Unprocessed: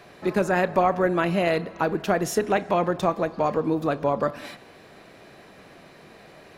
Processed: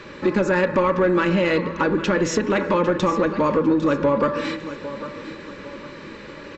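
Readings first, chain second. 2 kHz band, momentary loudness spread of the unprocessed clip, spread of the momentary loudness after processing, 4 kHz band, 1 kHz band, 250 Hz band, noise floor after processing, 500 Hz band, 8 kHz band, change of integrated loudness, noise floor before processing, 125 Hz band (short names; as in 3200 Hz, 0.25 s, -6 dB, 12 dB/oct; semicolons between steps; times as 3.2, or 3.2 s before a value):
+4.5 dB, 5 LU, 17 LU, +5.0 dB, +1.0 dB, +6.5 dB, -39 dBFS, +3.5 dB, +2.5 dB, +3.5 dB, -50 dBFS, +3.5 dB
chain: brick-wall FIR low-pass 8000 Hz; de-hum 83.4 Hz, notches 30; in parallel at +3 dB: limiter -14.5 dBFS, peak gain reduction 6.5 dB; on the sum: Butterworth band-stop 710 Hz, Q 2.4; compressor 2:1, threshold -21 dBFS, peak gain reduction 5.5 dB; high shelf 4900 Hz -9.5 dB; comb 3.5 ms, depth 32%; on a send: feedback echo 0.802 s, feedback 39%, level -14.5 dB; on the sum: soft clip -14 dBFS, distortion -19 dB; gain +4 dB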